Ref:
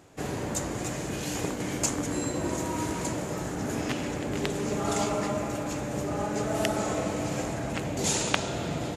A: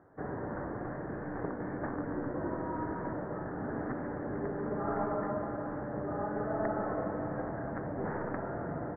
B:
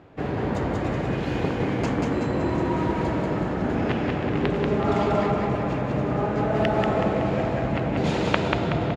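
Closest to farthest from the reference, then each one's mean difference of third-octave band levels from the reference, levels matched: B, A; 7.0, 12.5 decibels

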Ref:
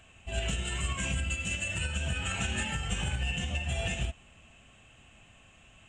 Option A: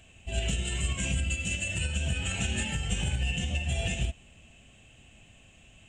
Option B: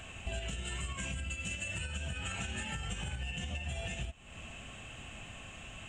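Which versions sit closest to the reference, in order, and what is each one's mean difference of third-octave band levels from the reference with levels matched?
A, B; 2.0, 5.5 decibels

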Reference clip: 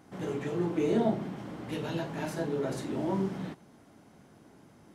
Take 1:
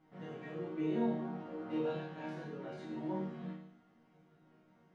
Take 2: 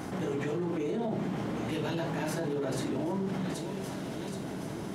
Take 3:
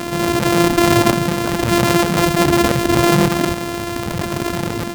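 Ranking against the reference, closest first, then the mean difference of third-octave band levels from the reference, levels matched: 1, 2, 3; 6.0, 8.0, 12.0 decibels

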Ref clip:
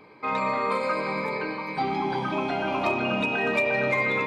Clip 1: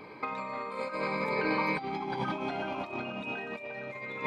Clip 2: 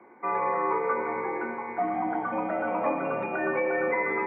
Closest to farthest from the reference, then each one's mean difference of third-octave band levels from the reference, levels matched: 1, 2; 5.0, 8.5 decibels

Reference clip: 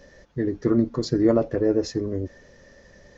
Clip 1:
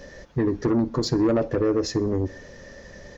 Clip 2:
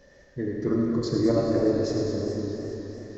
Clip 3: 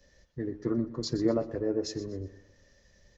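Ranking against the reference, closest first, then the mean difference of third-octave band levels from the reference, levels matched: 3, 1, 2; 2.5, 4.5, 7.0 decibels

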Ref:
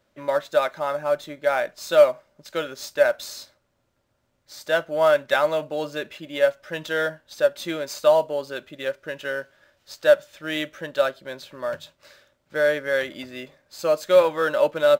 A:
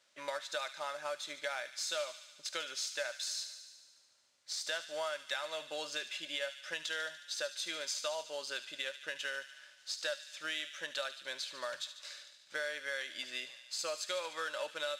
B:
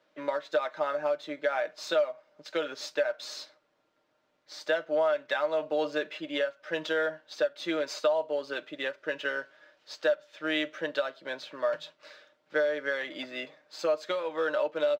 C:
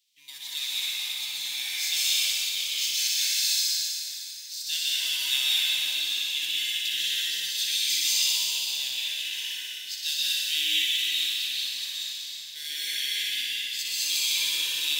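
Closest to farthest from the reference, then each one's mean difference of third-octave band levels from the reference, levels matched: B, A, C; 5.0, 9.0, 17.5 decibels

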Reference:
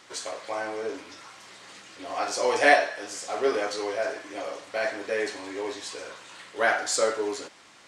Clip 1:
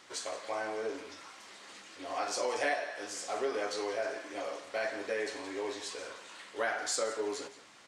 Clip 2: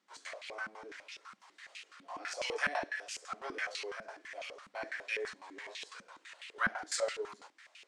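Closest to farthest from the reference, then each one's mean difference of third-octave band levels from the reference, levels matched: 1, 2; 3.5, 6.5 decibels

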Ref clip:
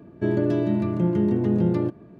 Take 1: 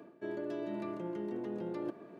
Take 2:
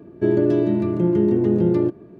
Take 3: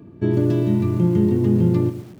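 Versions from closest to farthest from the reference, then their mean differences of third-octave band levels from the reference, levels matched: 2, 3, 1; 2.0, 4.0, 6.5 decibels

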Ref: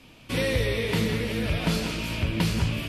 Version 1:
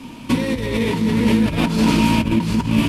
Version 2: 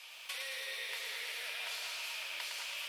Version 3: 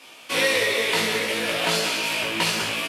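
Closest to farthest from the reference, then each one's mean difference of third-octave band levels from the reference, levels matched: 1, 3, 2; 5.5, 8.0, 16.0 decibels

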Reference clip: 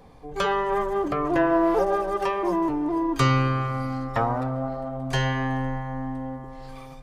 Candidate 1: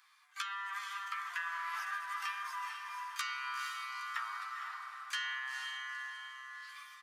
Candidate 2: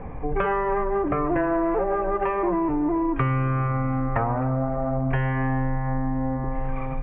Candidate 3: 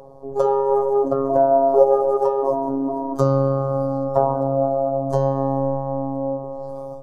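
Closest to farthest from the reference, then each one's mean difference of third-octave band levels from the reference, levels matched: 2, 3, 1; 5.5, 9.5, 21.0 decibels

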